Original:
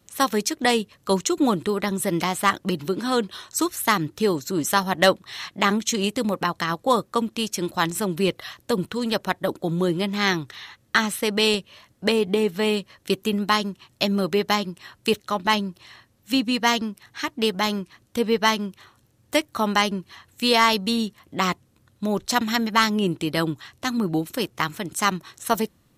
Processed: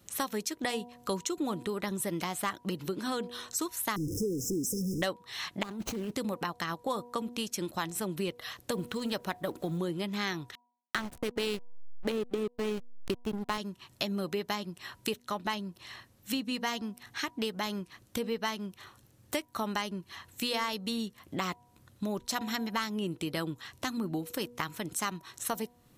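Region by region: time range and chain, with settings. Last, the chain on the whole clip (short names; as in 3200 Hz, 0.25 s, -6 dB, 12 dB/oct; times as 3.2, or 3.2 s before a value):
3.96–5.02 zero-crossing step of -19.5 dBFS + brick-wall FIR band-stop 530–5000 Hz + high shelf 10000 Hz -8.5 dB
5.63–6.12 median filter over 25 samples + negative-ratio compressor -30 dBFS
8.72–9.78 G.711 law mismatch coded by mu + mismatched tape noise reduction encoder only
10.55–13.58 bell 330 Hz +5 dB 1.1 oct + backlash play -17 dBFS
whole clip: high shelf 11000 Hz +5 dB; de-hum 241.9 Hz, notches 4; compressor 3:1, threshold -34 dBFS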